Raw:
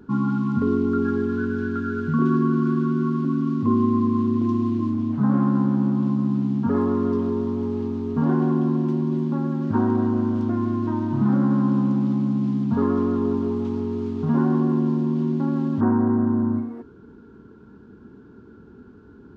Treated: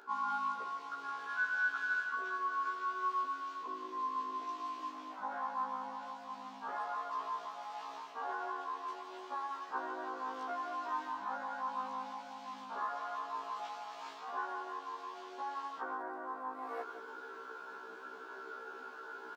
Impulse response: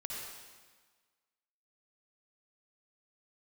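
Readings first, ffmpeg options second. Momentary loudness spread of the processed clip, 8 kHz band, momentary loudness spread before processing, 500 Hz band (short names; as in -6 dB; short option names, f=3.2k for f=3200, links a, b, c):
11 LU, n/a, 5 LU, -21.0 dB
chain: -af "areverse,acompressor=threshold=-34dB:ratio=6,areverse,highpass=f=620:w=0.5412,highpass=f=620:w=1.3066,aecho=1:1:169:0.237,afftfilt=real='re*1.73*eq(mod(b,3),0)':imag='im*1.73*eq(mod(b,3),0)':win_size=2048:overlap=0.75,volume=14.5dB"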